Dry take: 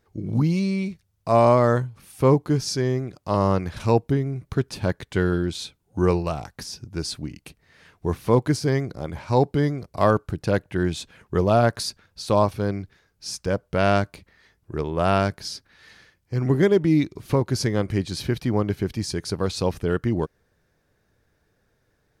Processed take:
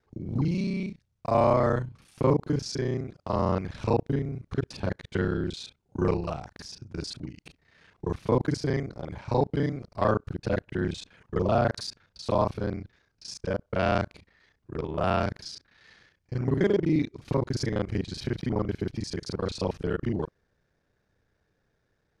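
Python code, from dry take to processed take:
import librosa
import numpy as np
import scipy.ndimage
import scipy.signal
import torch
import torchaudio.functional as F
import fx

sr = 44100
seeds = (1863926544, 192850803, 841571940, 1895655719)

y = fx.local_reverse(x, sr, ms=32.0)
y = scipy.signal.sosfilt(scipy.signal.butter(2, 6300.0, 'lowpass', fs=sr, output='sos'), y)
y = y * librosa.db_to_amplitude(-5.0)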